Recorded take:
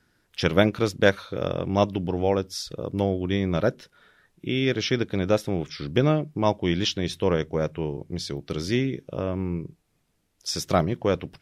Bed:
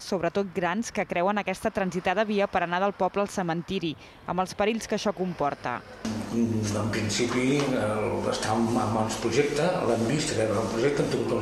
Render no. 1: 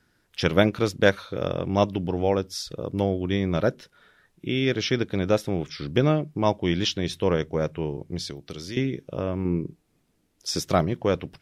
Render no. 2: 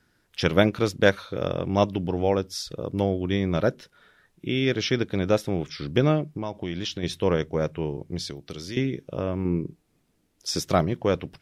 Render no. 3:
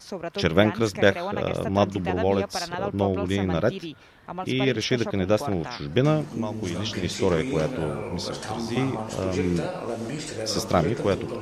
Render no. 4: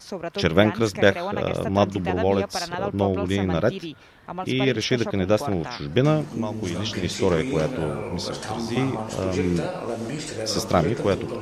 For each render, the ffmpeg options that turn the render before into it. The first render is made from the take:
-filter_complex "[0:a]asettb=1/sr,asplit=3[a][b][c];[a]atrim=end=8.304[d];[b]atrim=start=8.3:end=8.77,asetpts=PTS-STARTPTS,afade=t=in:d=0.004:c=qsin,afade=t=out:st=0.466:d=0.004:c=qsin,acrossover=split=440|3000[e][f][g];[e]acompressor=threshold=-37dB:ratio=4[h];[f]acompressor=threshold=-45dB:ratio=4[i];[g]acompressor=threshold=-39dB:ratio=4[j];[h][i][j]amix=inputs=3:normalize=0[k];[c]atrim=start=8.766[l];[d][k]acrossfade=d=0.004:c1=hsin:c2=qsin[m];[m][l]acrossfade=d=0.004:c1=qsin:c2=hsin,asettb=1/sr,asplit=3[n][o][p];[n]atrim=end=9.454[q];[o]atrim=start=9.45:end=10.6,asetpts=PTS-STARTPTS,afade=t=in:d=0.004:c=qsin,afade=t=out:st=1.146:d=0.004:c=qsin,equalizer=f=290:w=0.99:g=7[r];[p]atrim=start=10.596[s];[q][r]acrossfade=d=0.004:c1=hsin:c2=qsin[t];[t][s]acrossfade=d=0.004:c1=qsin:c2=hsin"
-filter_complex "[0:a]asettb=1/sr,asplit=3[a][b][c];[a]atrim=end=6.354[d];[b]atrim=start=6.35:end=7.03,asetpts=PTS-STARTPTS,afade=t=in:d=0.004:c=qsin,afade=t=out:st=0.676:d=0.004:c=qsin,acompressor=threshold=-26dB:ratio=6:attack=3.2:release=140:knee=1:detection=peak[e];[c]atrim=start=7.026[f];[d][e]acrossfade=d=0.004:c1=hsin:c2=qsin[g];[g][f]acrossfade=d=0.004:c1=qsin:c2=hsin"
-filter_complex "[1:a]volume=-6dB[a];[0:a][a]amix=inputs=2:normalize=0"
-af "volume=1.5dB"

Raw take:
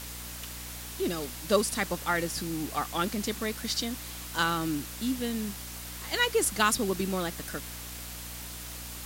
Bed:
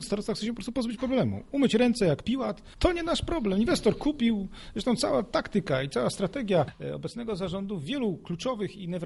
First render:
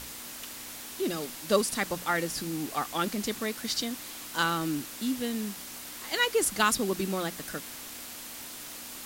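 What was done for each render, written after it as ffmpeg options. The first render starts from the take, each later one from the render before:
-af "bandreject=f=60:t=h:w=6,bandreject=f=120:t=h:w=6,bandreject=f=180:t=h:w=6"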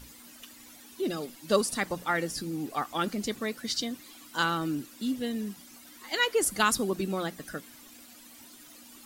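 -af "afftdn=nr=13:nf=-42"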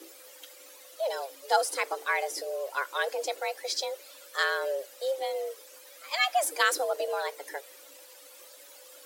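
-filter_complex "[0:a]acrossover=split=4600[a][b];[b]asoftclip=type=tanh:threshold=-25dB[c];[a][c]amix=inputs=2:normalize=0,afreqshift=270"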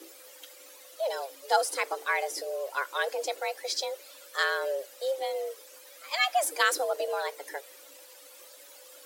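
-af anull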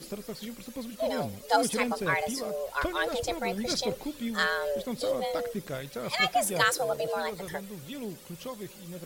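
-filter_complex "[1:a]volume=-9dB[a];[0:a][a]amix=inputs=2:normalize=0"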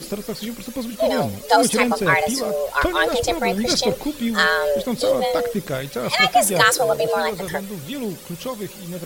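-af "volume=10.5dB,alimiter=limit=-3dB:level=0:latency=1"

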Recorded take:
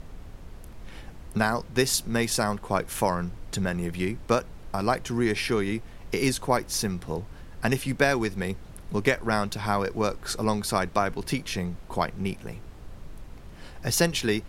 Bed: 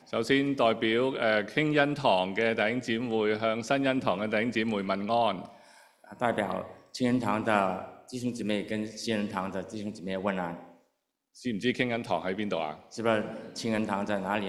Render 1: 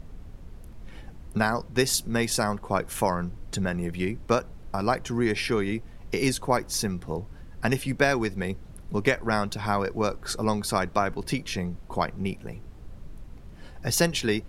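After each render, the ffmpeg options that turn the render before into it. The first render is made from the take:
-af "afftdn=nr=6:nf=-45"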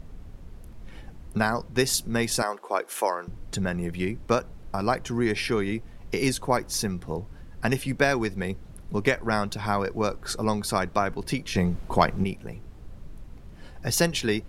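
-filter_complex "[0:a]asettb=1/sr,asplit=3[a][b][c];[a]atrim=end=2.424[d];[b]atrim=start=2.42:end=3.28,asetpts=PTS-STARTPTS,afade=t=in:d=0.004:c=qsin,afade=t=out:st=0.856:d=0.004:c=qsin,highpass=f=340:w=0.5412,highpass=f=340:w=1.3066[e];[c]atrim=start=3.276[f];[d][e]acrossfade=d=0.004:c1=hsin:c2=qsin[g];[g][f]acrossfade=d=0.004:c1=qsin:c2=hsin,asettb=1/sr,asplit=3[h][i][j];[h]atrim=end=11.554[k];[i]atrim=start=11.55:end=12.24,asetpts=PTS-STARTPTS,afade=t=in:d=0.004:c=qsin,afade=t=out:st=0.686:d=0.004:c=qsin,acontrast=73[l];[j]atrim=start=12.236[m];[k][l]acrossfade=d=0.004:c1=hsin:c2=qsin[n];[n][m]acrossfade=d=0.004:c1=qsin:c2=hsin"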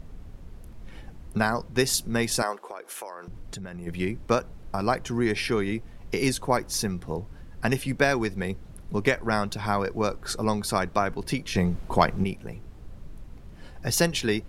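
-filter_complex "[0:a]asplit=3[a][b][c];[a]afade=t=out:st=2.66:d=0.02[d];[b]acompressor=threshold=-34dB:ratio=6:attack=3.2:release=140:knee=1:detection=peak,afade=t=in:st=2.66:d=0.02,afade=t=out:st=3.86:d=0.02[e];[c]afade=t=in:st=3.86:d=0.02[f];[d][e][f]amix=inputs=3:normalize=0"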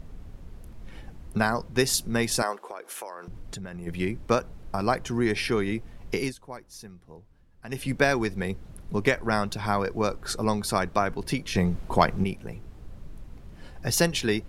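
-filter_complex "[0:a]asplit=3[a][b][c];[a]atrim=end=6.34,asetpts=PTS-STARTPTS,afade=t=out:st=6.16:d=0.18:silence=0.149624[d];[b]atrim=start=6.34:end=7.68,asetpts=PTS-STARTPTS,volume=-16.5dB[e];[c]atrim=start=7.68,asetpts=PTS-STARTPTS,afade=t=in:d=0.18:silence=0.149624[f];[d][e][f]concat=n=3:v=0:a=1"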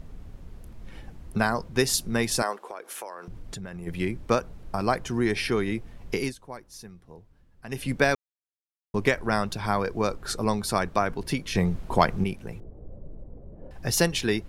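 -filter_complex "[0:a]asettb=1/sr,asplit=3[a][b][c];[a]atrim=end=12.604[d];[b]atrim=start=12.6:end=13.71,asetpts=PTS-STARTPTS,afade=t=in:d=0.004:c=qsin,afade=t=out:st=1.106:d=0.004:c=qsin,lowpass=f=550:t=q:w=2.9[e];[c]atrim=start=13.706[f];[d][e]acrossfade=d=0.004:c1=hsin:c2=qsin[g];[g][f]acrossfade=d=0.004:c1=qsin:c2=hsin,asplit=3[h][i][j];[h]atrim=end=8.15,asetpts=PTS-STARTPTS,afade=t=out:st=8.146:d=0.004:c=hsin[k];[i]atrim=start=8.15:end=8.94,asetpts=PTS-STARTPTS,volume=0[l];[j]atrim=start=8.94,asetpts=PTS-STARTPTS,afade=t=in:d=0.004:c=hsin[m];[k][l][m]concat=n=3:v=0:a=1"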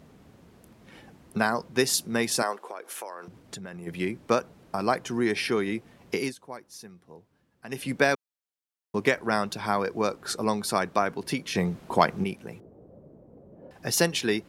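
-af "highpass=170"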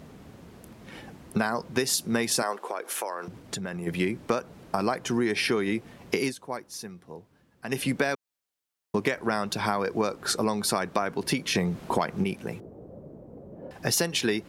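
-filter_complex "[0:a]asplit=2[a][b];[b]alimiter=limit=-13.5dB:level=0:latency=1:release=92,volume=0dB[c];[a][c]amix=inputs=2:normalize=0,acompressor=threshold=-22dB:ratio=6"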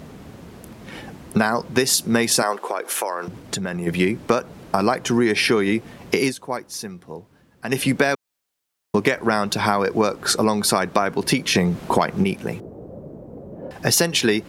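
-af "volume=7.5dB,alimiter=limit=-2dB:level=0:latency=1"

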